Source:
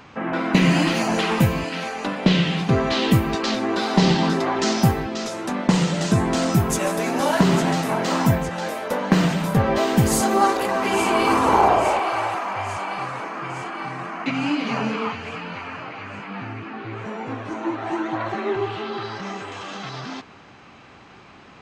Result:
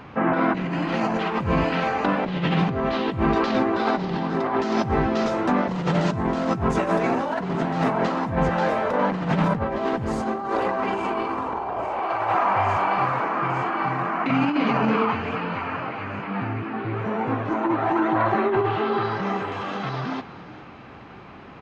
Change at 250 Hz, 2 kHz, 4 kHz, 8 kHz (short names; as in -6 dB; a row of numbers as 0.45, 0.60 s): -2.0 dB, -1.5 dB, -8.5 dB, under -15 dB